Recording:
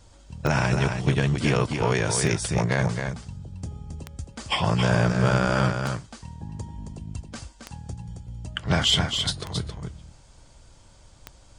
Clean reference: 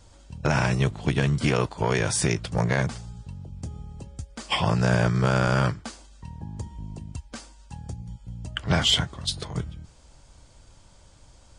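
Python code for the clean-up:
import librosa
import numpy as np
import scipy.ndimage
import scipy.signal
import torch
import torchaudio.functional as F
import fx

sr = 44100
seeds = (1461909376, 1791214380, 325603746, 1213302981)

y = fx.fix_declip(x, sr, threshold_db=-10.5)
y = fx.fix_declick_ar(y, sr, threshold=10.0)
y = fx.fix_echo_inverse(y, sr, delay_ms=270, level_db=-6.0)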